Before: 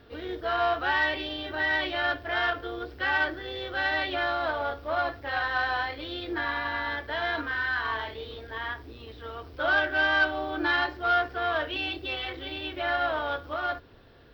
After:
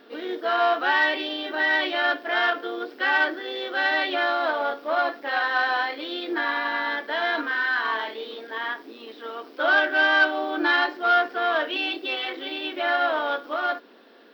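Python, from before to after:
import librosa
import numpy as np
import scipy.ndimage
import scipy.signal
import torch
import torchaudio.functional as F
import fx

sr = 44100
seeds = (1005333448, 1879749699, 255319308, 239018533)

y = fx.brickwall_highpass(x, sr, low_hz=200.0)
y = y * librosa.db_to_amplitude(4.5)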